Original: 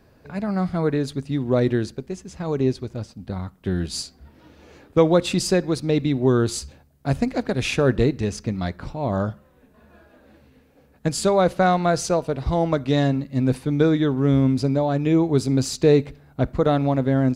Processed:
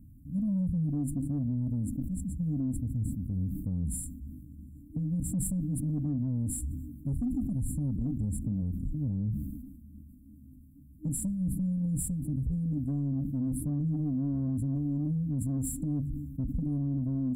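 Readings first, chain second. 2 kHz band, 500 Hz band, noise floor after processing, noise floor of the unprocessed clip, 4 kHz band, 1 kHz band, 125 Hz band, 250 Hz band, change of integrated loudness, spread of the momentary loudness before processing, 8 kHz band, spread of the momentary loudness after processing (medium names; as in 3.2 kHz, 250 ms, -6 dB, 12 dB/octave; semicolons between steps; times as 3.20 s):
under -40 dB, -31.5 dB, -52 dBFS, -56 dBFS, under -40 dB, under -30 dB, -6.5 dB, -8.5 dB, -10.5 dB, 12 LU, -6.0 dB, 7 LU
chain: bass shelf 140 Hz +5 dB; on a send: feedback echo behind a band-pass 263 ms, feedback 65%, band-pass 1.1 kHz, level -13.5 dB; on the sum: compression 3:1, threshold -19 dBFS, peak gain reduction 7.5 dB; FFT band-reject 310–7200 Hz; high-order bell 5.1 kHz -9 dB; in parallel at -3 dB: saturation -23 dBFS, distortion -12 dB; on the sum: phaser 1.3 Hz, delay 4.4 ms, feedback 30%; peak limiter -20 dBFS, peak gain reduction 10.5 dB; decay stretcher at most 43 dB/s; trim -5 dB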